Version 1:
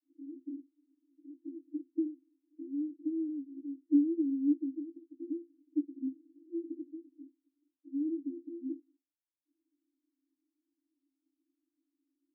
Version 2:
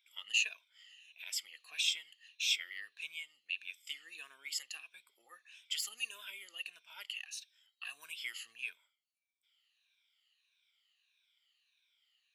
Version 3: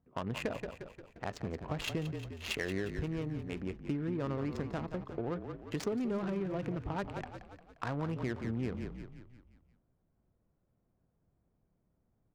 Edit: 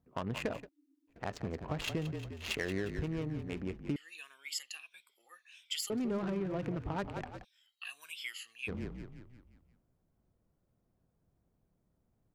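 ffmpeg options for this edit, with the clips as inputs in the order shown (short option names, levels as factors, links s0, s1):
-filter_complex "[1:a]asplit=2[s0][s1];[2:a]asplit=4[s2][s3][s4][s5];[s2]atrim=end=0.69[s6];[0:a]atrim=start=0.53:end=1.23[s7];[s3]atrim=start=1.07:end=3.962[s8];[s0]atrim=start=3.958:end=5.902[s9];[s4]atrim=start=5.898:end=7.45[s10];[s1]atrim=start=7.43:end=8.69[s11];[s5]atrim=start=8.67[s12];[s6][s7]acrossfade=d=0.16:c1=tri:c2=tri[s13];[s13][s8]acrossfade=d=0.16:c1=tri:c2=tri[s14];[s14][s9]acrossfade=d=0.004:c1=hsin:c2=hsin[s15];[s15][s10]acrossfade=d=0.004:c1=hsin:c2=hsin[s16];[s16][s11]acrossfade=d=0.02:c1=tri:c2=tri[s17];[s17][s12]acrossfade=d=0.02:c1=tri:c2=tri"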